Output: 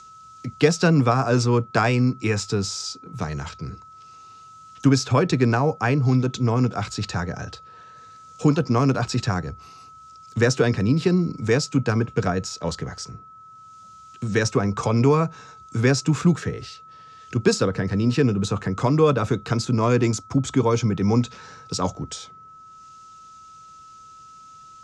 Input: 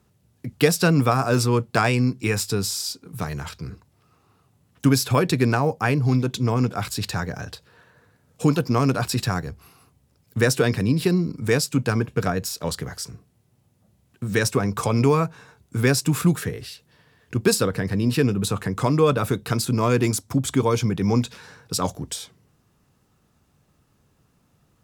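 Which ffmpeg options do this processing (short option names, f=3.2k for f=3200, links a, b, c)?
-filter_complex "[0:a]lowpass=f=6.6k:t=q:w=3.2,acrossover=split=150|690|3000[a][b][c][d];[d]acompressor=mode=upward:threshold=-33dB:ratio=2.5[e];[a][b][c][e]amix=inputs=4:normalize=0,aemphasis=mode=reproduction:type=75fm,aeval=exprs='val(0)+0.00708*sin(2*PI*1300*n/s)':c=same"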